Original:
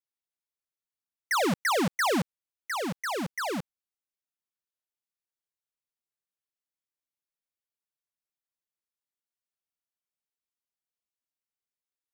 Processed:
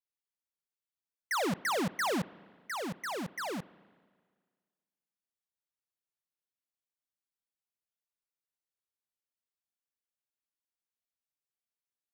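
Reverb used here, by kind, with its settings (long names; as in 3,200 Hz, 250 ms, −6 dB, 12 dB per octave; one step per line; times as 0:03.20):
spring reverb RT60 1.7 s, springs 35/54 ms, chirp 65 ms, DRR 19.5 dB
level −5.5 dB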